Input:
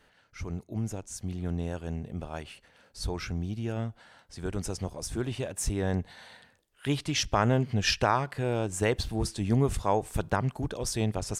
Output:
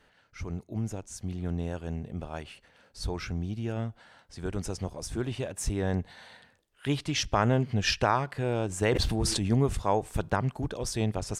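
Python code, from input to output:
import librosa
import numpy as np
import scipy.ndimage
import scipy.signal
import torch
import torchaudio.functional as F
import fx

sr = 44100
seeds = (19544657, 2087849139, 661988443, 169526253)

y = fx.high_shelf(x, sr, hz=8400.0, db=-5.5)
y = fx.sustainer(y, sr, db_per_s=21.0, at=(8.67, 9.54))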